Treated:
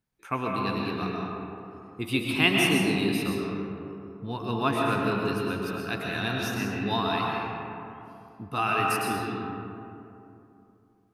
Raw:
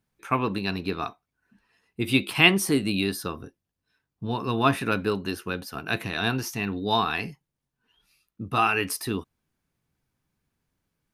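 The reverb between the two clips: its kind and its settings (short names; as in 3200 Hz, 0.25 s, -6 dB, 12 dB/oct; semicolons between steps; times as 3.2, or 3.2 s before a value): digital reverb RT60 2.9 s, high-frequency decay 0.4×, pre-delay 85 ms, DRR -2 dB; gain -5.5 dB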